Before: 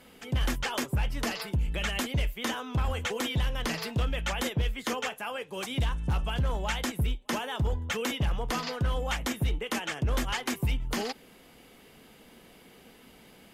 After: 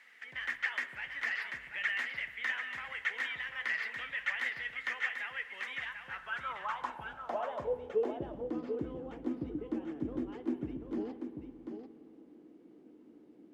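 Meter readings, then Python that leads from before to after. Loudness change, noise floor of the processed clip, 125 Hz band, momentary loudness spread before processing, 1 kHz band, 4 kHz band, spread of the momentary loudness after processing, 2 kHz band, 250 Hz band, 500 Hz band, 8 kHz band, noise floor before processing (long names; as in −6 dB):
−6.0 dB, −58 dBFS, −22.0 dB, 3 LU, −7.0 dB, −11.5 dB, 10 LU, +1.0 dB, −5.0 dB, −3.0 dB, below −20 dB, −55 dBFS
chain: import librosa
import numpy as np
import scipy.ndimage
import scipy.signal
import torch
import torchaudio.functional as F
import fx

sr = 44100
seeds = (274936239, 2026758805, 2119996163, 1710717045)

p1 = fx.rev_spring(x, sr, rt60_s=2.3, pass_ms=(56,), chirp_ms=60, drr_db=12.0)
p2 = fx.dmg_noise_colour(p1, sr, seeds[0], colour='white', level_db=-55.0)
p3 = fx.filter_sweep_bandpass(p2, sr, from_hz=1900.0, to_hz=310.0, start_s=6.01, end_s=8.4, q=7.6)
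p4 = p3 + fx.echo_single(p3, sr, ms=740, db=-7.0, dry=0)
y = p4 * librosa.db_to_amplitude(8.0)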